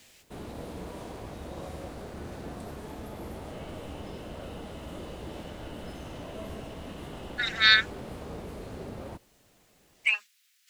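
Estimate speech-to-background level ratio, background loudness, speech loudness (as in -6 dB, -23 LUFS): 17.5 dB, -41.5 LUFS, -24.0 LUFS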